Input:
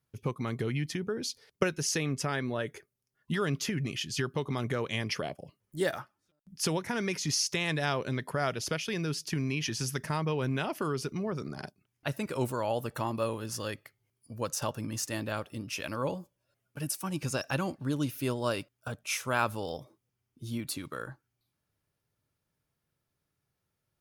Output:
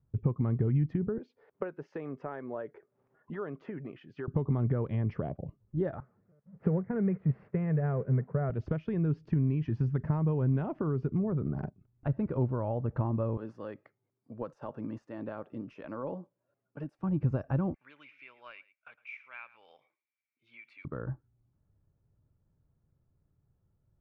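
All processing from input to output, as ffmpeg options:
-filter_complex "[0:a]asettb=1/sr,asplit=3[s0][s1][s2];[s0]atrim=end=1.184[s3];[s1]atrim=start=1.18:end=4.28,asetpts=PTS-STARTPTS,afade=t=in:d=0.004:c=qsin,afade=t=out:st=3.096:d=0.004:c=qsin,highpass=510,highshelf=f=3900:g=-12,acompressor=mode=upward:threshold=0.00355:ratio=2.5:attack=3.2:release=140:knee=2.83:detection=peak[s4];[s2]atrim=start=4.276[s5];[s3][s4]acrossfade=d=0.004:c1=hsin:c2=qsin[s6];[s6][s5]acrossfade=d=0.004:c1=qsin:c2=hsin,asettb=1/sr,asplit=3[s7][s8][s9];[s7]atrim=end=6.004[s10];[s8]atrim=start=6:end=8.5,asetpts=PTS-STARTPTS,afade=t=in:d=0.004:c=qsin,afade=t=out:st=2.496:d=0.004:c=qsin,aeval=exprs='val(0)+0.5*0.0168*sgn(val(0))':c=same,agate=range=0.0224:threshold=0.0447:ratio=3:release=100:detection=peak,highpass=130,equalizer=f=130:t=q:w=4:g=4,equalizer=f=190:t=q:w=4:g=6,equalizer=f=300:t=q:w=4:g=-9,equalizer=f=450:t=q:w=4:g=7,equalizer=f=910:t=q:w=4:g=-6,equalizer=f=2000:t=q:w=4:g=3,lowpass=f=2200:w=0.5412,lowpass=f=2200:w=1.3066[s11];[s9]atrim=start=8.496[s12];[s10][s11]acrossfade=d=0.004:c1=hsin:c2=qsin[s13];[s13][s12]acrossfade=d=0.004:c1=qsin:c2=hsin,asettb=1/sr,asplit=3[s14][s15][s16];[s14]atrim=end=13.374[s17];[s15]atrim=start=13.37:end=16.99,asetpts=PTS-STARTPTS,afade=t=in:d=0.004:c=qsin,afade=t=out:st=3.616:d=0.004:c=qsin,highpass=190,aemphasis=mode=production:type=bsi,acompressor=threshold=0.0282:ratio=2.5:attack=3.2:release=140:knee=1:detection=peak[s18];[s16]atrim=start=16.986[s19];[s17][s18]acrossfade=d=0.004:c1=hsin:c2=qsin[s20];[s20][s19]acrossfade=d=0.004:c1=qsin:c2=hsin,asettb=1/sr,asplit=3[s21][s22][s23];[s21]atrim=end=17.744[s24];[s22]atrim=start=17.74:end=20.85,asetpts=PTS-STARTPTS,afade=t=in:d=0.004:c=qsin,afade=t=out:st=3.106:d=0.004:c=qsin,highpass=f=2300:t=q:w=12,aecho=1:1:110:0.106,atrim=end_sample=137151[s25];[s23]atrim=start=20.846[s26];[s24][s25]acrossfade=d=0.004:c1=hsin:c2=qsin[s27];[s27][s26]acrossfade=d=0.004:c1=qsin:c2=hsin,acompressor=threshold=0.0158:ratio=2,lowpass=1200,aemphasis=mode=reproduction:type=riaa"

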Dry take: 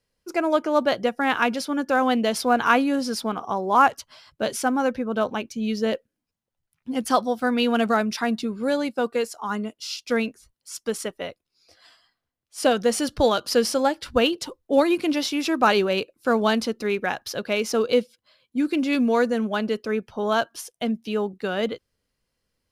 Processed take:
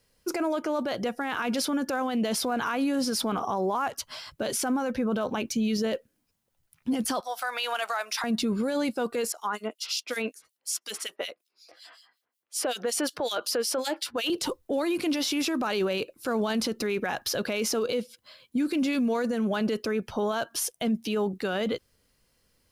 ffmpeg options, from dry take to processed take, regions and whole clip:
-filter_complex "[0:a]asettb=1/sr,asplit=3[s0][s1][s2];[s0]atrim=end=7.204[s3];[s1]atrim=start=7.2:end=8.24,asetpts=PTS-STARTPTS,afade=t=in:d=0.004:c=qsin,afade=t=out:st=1.036:d=0.004:c=qsin,highpass=f=710:w=0.5412,highpass=f=710:w=1.3066,acompressor=threshold=0.0158:ratio=2:attack=3.2:release=140:knee=1:detection=peak[s4];[s2]atrim=start=8.236[s5];[s3][s4]acrossfade=d=0.004:c1=hsin:c2=qsin[s6];[s6][s5]acrossfade=d=0.004:c1=qsin:c2=hsin,asettb=1/sr,asplit=3[s7][s8][s9];[s7]atrim=end=9.324[s10];[s8]atrim=start=9.32:end=14.3,asetpts=PTS-STARTPTS,afade=t=in:d=0.004:c=qsin,afade=t=out:st=4.976:d=0.004:c=qsin,highpass=390,acrossover=split=2500[s11][s12];[s11]aeval=exprs='val(0)*(1-1/2+1/2*cos(2*PI*5.4*n/s))':c=same[s13];[s12]aeval=exprs='val(0)*(1-1/2-1/2*cos(2*PI*5.4*n/s))':c=same[s14];[s13][s14]amix=inputs=2:normalize=0[s15];[s9]atrim=start=14.296[s16];[s10][s15]acrossfade=d=0.004:c1=hsin:c2=qsin[s17];[s17][s16]acrossfade=d=0.004:c1=qsin:c2=hsin,acompressor=threshold=0.0562:ratio=6,highshelf=f=7900:g=6.5,alimiter=level_in=1.5:limit=0.0631:level=0:latency=1:release=11,volume=0.668,volume=2.37"

